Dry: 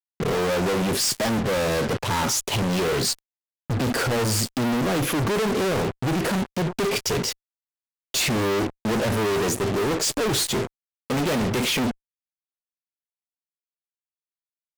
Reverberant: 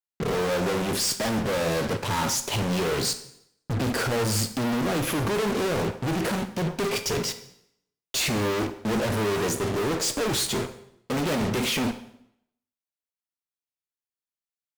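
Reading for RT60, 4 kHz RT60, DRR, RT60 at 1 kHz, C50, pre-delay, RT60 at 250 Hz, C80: 0.75 s, 0.70 s, 8.5 dB, 0.75 s, 12.0 dB, 5 ms, 0.80 s, 15.0 dB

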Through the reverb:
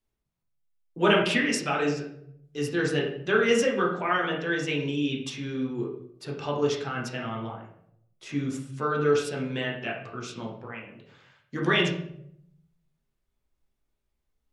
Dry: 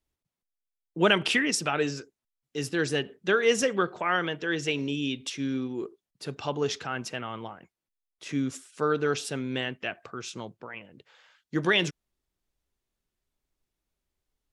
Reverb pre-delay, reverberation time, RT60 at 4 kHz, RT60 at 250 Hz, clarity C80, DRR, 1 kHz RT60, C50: 7 ms, 0.70 s, 0.50 s, 0.85 s, 8.5 dB, -3.0 dB, 0.60 s, 5.5 dB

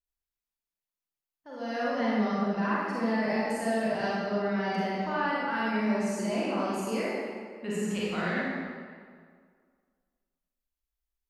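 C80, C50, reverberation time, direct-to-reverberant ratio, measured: -1.5 dB, -4.5 dB, 1.9 s, -7.5 dB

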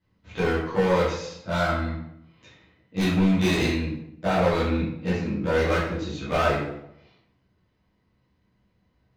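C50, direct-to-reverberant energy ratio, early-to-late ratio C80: 2.0 dB, -10.5 dB, 5.5 dB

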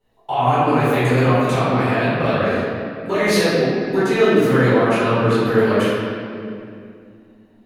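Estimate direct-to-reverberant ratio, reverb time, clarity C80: -13.5 dB, 2.4 s, -1.5 dB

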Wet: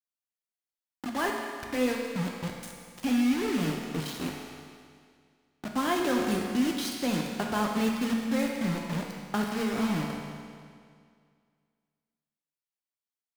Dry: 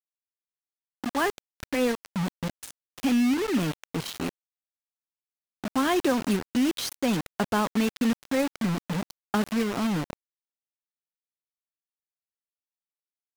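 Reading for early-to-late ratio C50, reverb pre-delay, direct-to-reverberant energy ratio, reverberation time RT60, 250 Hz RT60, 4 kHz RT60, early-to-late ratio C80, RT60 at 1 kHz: 2.0 dB, 7 ms, -0.5 dB, 2.1 s, 2.1 s, 2.0 s, 3.0 dB, 2.1 s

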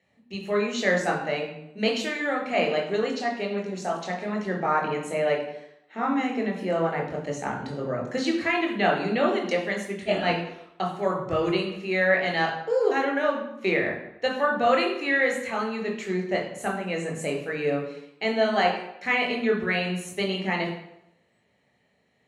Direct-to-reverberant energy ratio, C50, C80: 0.0 dB, 6.0 dB, 9.0 dB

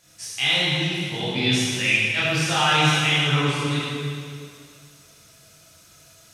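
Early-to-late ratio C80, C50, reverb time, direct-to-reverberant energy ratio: -1.5 dB, -4.0 dB, 2.3 s, -9.5 dB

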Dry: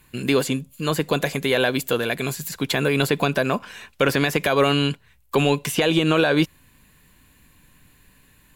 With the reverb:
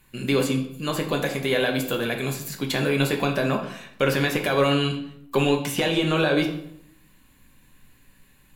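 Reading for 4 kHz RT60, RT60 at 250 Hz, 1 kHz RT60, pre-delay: 0.55 s, 0.85 s, 0.70 s, 4 ms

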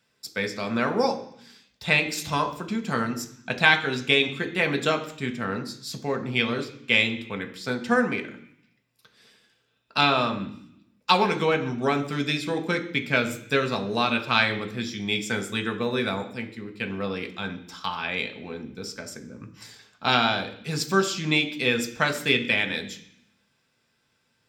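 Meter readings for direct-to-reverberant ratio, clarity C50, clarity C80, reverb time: 4.5 dB, 12.0 dB, 15.0 dB, 0.60 s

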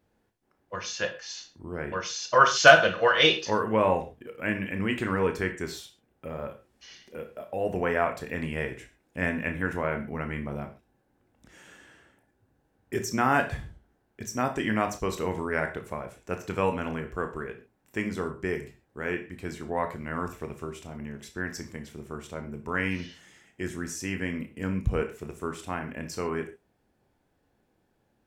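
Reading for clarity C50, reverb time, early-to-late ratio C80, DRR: 10.5 dB, no single decay rate, 16.0 dB, 5.5 dB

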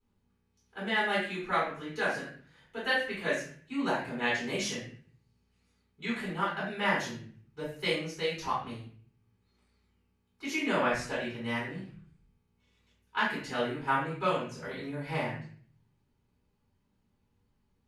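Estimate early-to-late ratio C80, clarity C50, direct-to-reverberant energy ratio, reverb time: 7.5 dB, 3.0 dB, -8.5 dB, 0.50 s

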